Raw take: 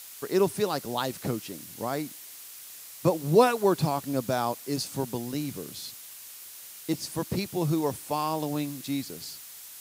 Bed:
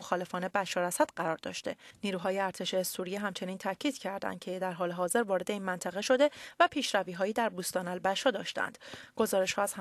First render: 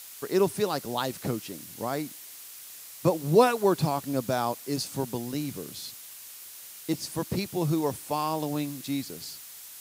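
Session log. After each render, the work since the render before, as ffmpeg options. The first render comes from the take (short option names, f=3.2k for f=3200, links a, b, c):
-af anull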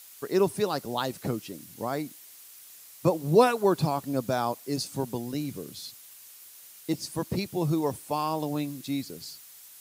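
-af "afftdn=nr=6:nf=-45"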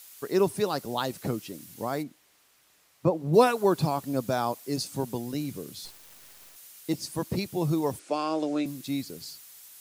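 -filter_complex "[0:a]asplit=3[a][b][c];[a]afade=t=out:st=2.02:d=0.02[d];[b]lowpass=f=1.4k:p=1,afade=t=in:st=2.02:d=0.02,afade=t=out:st=3.33:d=0.02[e];[c]afade=t=in:st=3.33:d=0.02[f];[d][e][f]amix=inputs=3:normalize=0,asplit=3[g][h][i];[g]afade=t=out:st=5.84:d=0.02[j];[h]acrusher=bits=5:dc=4:mix=0:aa=0.000001,afade=t=in:st=5.84:d=0.02,afade=t=out:st=6.55:d=0.02[k];[i]afade=t=in:st=6.55:d=0.02[l];[j][k][l]amix=inputs=3:normalize=0,asettb=1/sr,asplit=3[m][n][o];[m]atrim=end=7.994[p];[n]atrim=start=7.99:end=8.66,asetpts=PTS-STARTPTS,afade=t=in:d=0.004:c=qsin,afade=t=out:st=0.666:d=0.004:c=qsin,highpass=f=210:w=0.5412,highpass=f=210:w=1.3066,equalizer=f=340:t=q:w=4:g=7,equalizer=f=580:t=q:w=4:g=4,equalizer=f=930:t=q:w=4:g=-8,equalizer=f=1.4k:t=q:w=4:g=7,equalizer=f=2.3k:t=q:w=4:g=4,lowpass=f=7.9k:w=0.5412,lowpass=f=7.9k:w=1.3066[q];[o]atrim=start=8.656[r];[p][q]acrossfade=d=0.004:c1=hsin:c2=qsin[s];[s][r]acrossfade=d=0.004:c1=qsin:c2=hsin"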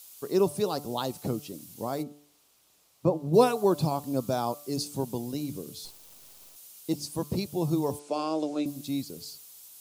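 -af "equalizer=f=1.8k:w=1.5:g=-10,bandreject=f=145.9:t=h:w=4,bandreject=f=291.8:t=h:w=4,bandreject=f=437.7:t=h:w=4,bandreject=f=583.6:t=h:w=4,bandreject=f=729.5:t=h:w=4,bandreject=f=875.4:t=h:w=4,bandreject=f=1.0213k:t=h:w=4,bandreject=f=1.1672k:t=h:w=4,bandreject=f=1.3131k:t=h:w=4"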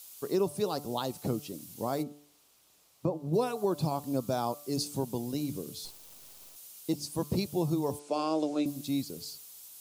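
-af "alimiter=limit=-18.5dB:level=0:latency=1:release=421"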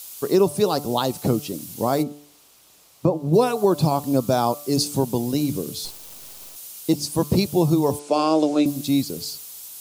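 -af "volume=11dB"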